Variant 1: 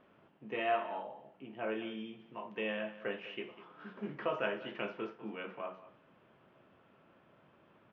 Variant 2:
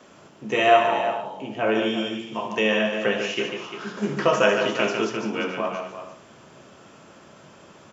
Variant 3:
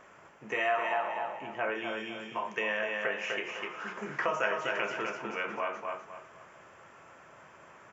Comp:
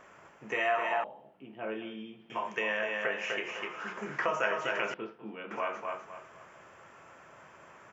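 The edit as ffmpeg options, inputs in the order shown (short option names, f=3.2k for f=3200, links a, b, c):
-filter_complex "[0:a]asplit=2[a][b];[2:a]asplit=3[c][d][e];[c]atrim=end=1.042[f];[a]atrim=start=1.038:end=2.302[g];[d]atrim=start=2.298:end=4.942[h];[b]atrim=start=4.938:end=5.512[i];[e]atrim=start=5.508[j];[f][g]acrossfade=d=0.004:c1=hsin:c2=hsin[k];[k][h]acrossfade=d=0.004:c1=hsin:c2=hsin[l];[l][i]acrossfade=d=0.004:c1=hsin:c2=hsin[m];[m][j]acrossfade=d=0.004:c1=hsin:c2=hsin"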